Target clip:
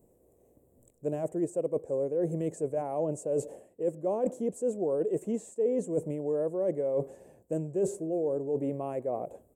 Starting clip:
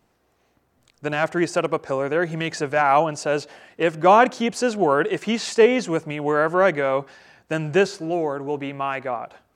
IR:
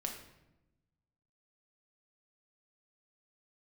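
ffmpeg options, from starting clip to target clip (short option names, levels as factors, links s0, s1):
-af "firequalizer=gain_entry='entry(230,0);entry(520,7);entry(760,-7);entry(2300,-20);entry(4700,-29);entry(7600,2)':delay=0.05:min_phase=1,areverse,acompressor=threshold=0.0355:ratio=5,areverse,equalizer=f=1400:t=o:w=0.73:g=-15,volume=1.19"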